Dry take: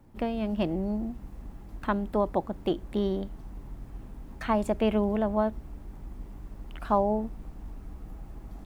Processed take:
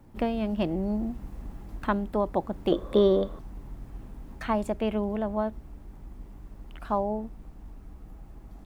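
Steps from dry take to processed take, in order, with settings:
speech leveller 0.5 s
0:02.72–0:03.39: hollow resonant body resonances 530/1,100/3,500 Hz, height 17 dB, ringing for 20 ms

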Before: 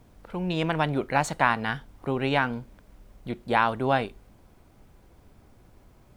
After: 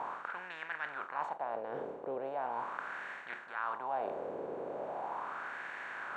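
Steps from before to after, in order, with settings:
compressor on every frequency bin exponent 0.4
reversed playback
downward compressor 10 to 1, threshold −27 dBFS, peak gain reduction 15.5 dB
reversed playback
LFO wah 0.39 Hz 460–1,800 Hz, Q 3.6
level +1 dB

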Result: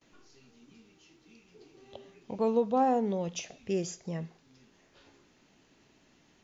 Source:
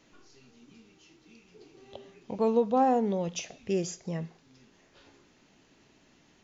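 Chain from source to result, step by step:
noise gate with hold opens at −55 dBFS
level −2 dB

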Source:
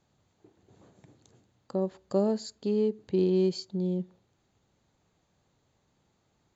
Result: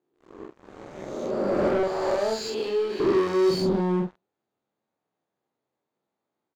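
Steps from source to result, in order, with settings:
peak hold with a rise ahead of every peak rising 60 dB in 1.71 s
high-pass filter 260 Hz 12 dB per octave, from 0:01.83 910 Hz, from 0:03.00 290 Hz
leveller curve on the samples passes 5
low-pass filter 1,400 Hz 6 dB per octave
double-tracking delay 45 ms −3 dB
level −2 dB

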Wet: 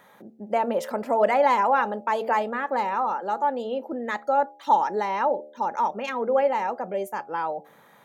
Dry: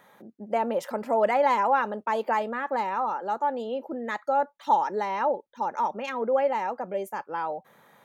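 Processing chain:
hum removal 74.69 Hz, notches 11
level +2.5 dB

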